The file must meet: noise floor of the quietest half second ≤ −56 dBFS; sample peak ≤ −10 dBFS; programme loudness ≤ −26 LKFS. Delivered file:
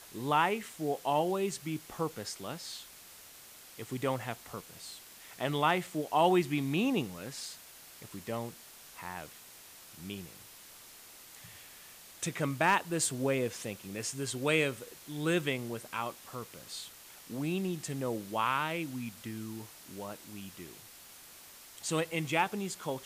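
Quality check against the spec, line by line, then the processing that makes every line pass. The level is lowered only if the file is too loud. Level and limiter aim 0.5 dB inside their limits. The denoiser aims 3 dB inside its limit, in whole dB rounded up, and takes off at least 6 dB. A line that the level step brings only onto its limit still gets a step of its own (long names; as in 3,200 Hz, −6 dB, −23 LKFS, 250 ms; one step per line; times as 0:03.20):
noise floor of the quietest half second −53 dBFS: out of spec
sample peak −14.5 dBFS: in spec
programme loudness −33.5 LKFS: in spec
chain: broadband denoise 6 dB, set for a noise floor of −53 dBFS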